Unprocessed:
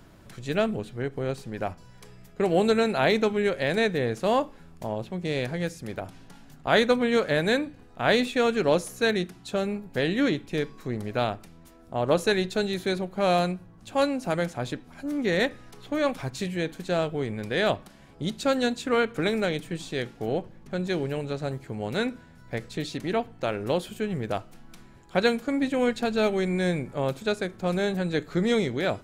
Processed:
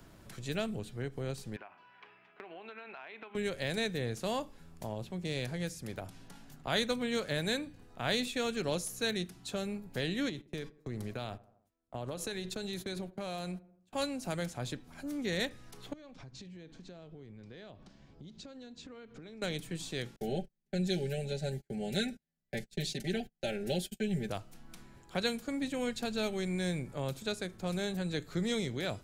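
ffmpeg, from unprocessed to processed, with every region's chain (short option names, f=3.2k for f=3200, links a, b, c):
-filter_complex "[0:a]asettb=1/sr,asplit=3[a][b][c];[a]atrim=end=1.564[d];[b]atrim=start=1.56:end=3.35,asetpts=PTS-STARTPTS,afade=t=in:d=0.004:c=qsin,afade=t=out:st=1.786:d=0.004:c=qsin,highpass=480,equalizer=f=510:t=q:w=4:g=-9,equalizer=f=1k:t=q:w=4:g=5,equalizer=f=1.5k:t=q:w=4:g=4,equalizer=f=2.6k:t=q:w=4:g=7,lowpass=f=3k:w=0.5412,lowpass=f=3k:w=1.3066,acompressor=threshold=-39dB:ratio=8:attack=3.2:release=140:knee=1:detection=peak[e];[c]atrim=start=3.346[f];[d][e]acrossfade=d=0.004:c1=hsin:c2=qsin[g];[g][f]acrossfade=d=0.004:c1=qsin:c2=hsin,asettb=1/sr,asplit=3[h][i][j];[h]atrim=end=10.294[k];[i]atrim=start=10.29:end=13.93,asetpts=PTS-STARTPTS,afade=t=in:d=0.004:c=qsin,afade=t=out:st=3.636:d=0.004:c=qsin,agate=range=-30dB:threshold=-39dB:ratio=16:release=100:detection=peak,acompressor=threshold=-27dB:ratio=5:attack=3.2:release=140:knee=1:detection=peak,asplit=2[l][m];[m]adelay=82,lowpass=f=1.6k:p=1,volume=-21dB,asplit=2[n][o];[o]adelay=82,lowpass=f=1.6k:p=1,volume=0.54,asplit=2[p][q];[q]adelay=82,lowpass=f=1.6k:p=1,volume=0.54,asplit=2[r][s];[s]adelay=82,lowpass=f=1.6k:p=1,volume=0.54[t];[l][n][p][r][t]amix=inputs=5:normalize=0,atrim=end_sample=160524[u];[j]atrim=start=13.926[v];[k][u]acrossfade=d=0.004:c1=hsin:c2=qsin[w];[w][v]acrossfade=d=0.004:c1=qsin:c2=hsin,asettb=1/sr,asplit=3[x][y][z];[x]atrim=end=15.934[aa];[y]atrim=start=15.93:end=19.42,asetpts=PTS-STARTPTS,afade=t=in:d=0.004:c=qsin,afade=t=out:st=3.486:d=0.004:c=qsin,lowpass=f=5.8k:w=0.5412,lowpass=f=5.8k:w=1.3066,equalizer=f=1.5k:w=0.3:g=-8.5,acompressor=threshold=-42dB:ratio=8:attack=3.2:release=140:knee=1:detection=peak[ab];[z]atrim=start=19.416[ac];[aa][ab]acrossfade=d=0.004:c1=hsin:c2=qsin[ad];[ad][ac]acrossfade=d=0.004:c1=qsin:c2=hsin,asettb=1/sr,asplit=3[ae][af][ag];[ae]atrim=end=20.164[ah];[af]atrim=start=20.16:end=24.29,asetpts=PTS-STARTPTS,afade=t=in:d=0.004:c=qsin,afade=t=out:st=4.126:d=0.004:c=qsin,agate=range=-37dB:threshold=-40dB:ratio=16:release=100:detection=peak,asuperstop=centerf=1100:order=12:qfactor=1.9,aecho=1:1:5.1:1,atrim=end_sample=182133[ai];[ag]atrim=start=24.286[aj];[ah][ai]acrossfade=d=0.004:c1=hsin:c2=qsin[ak];[ak][aj]acrossfade=d=0.004:c1=qsin:c2=hsin,highshelf=f=4.8k:g=4.5,acrossover=split=170|3000[al][am][an];[am]acompressor=threshold=-43dB:ratio=1.5[ao];[al][ao][an]amix=inputs=3:normalize=0,volume=-4dB"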